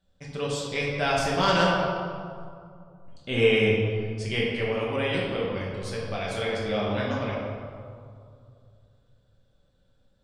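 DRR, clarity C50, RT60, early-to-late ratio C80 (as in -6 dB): -5.0 dB, -0.5 dB, 2.3 s, 1.5 dB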